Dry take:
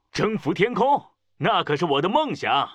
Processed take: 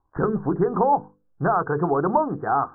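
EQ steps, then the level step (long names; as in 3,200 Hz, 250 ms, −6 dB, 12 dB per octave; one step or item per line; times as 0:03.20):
Butterworth low-pass 1,600 Hz 96 dB per octave
low-shelf EQ 150 Hz +6 dB
mains-hum notches 50/100/150/200/250/300/350/400/450/500 Hz
0.0 dB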